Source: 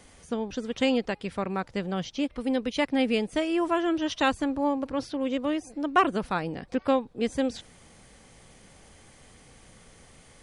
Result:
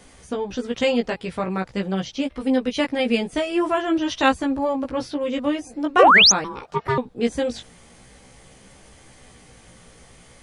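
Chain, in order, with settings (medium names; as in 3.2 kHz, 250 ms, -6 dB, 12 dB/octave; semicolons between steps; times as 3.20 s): chorus 0.46 Hz, delay 15 ms, depth 2.2 ms; 5.99–6.32 s: painted sound rise 420–7000 Hz -19 dBFS; 6.44–6.98 s: ring modulator 670 Hz; trim +7.5 dB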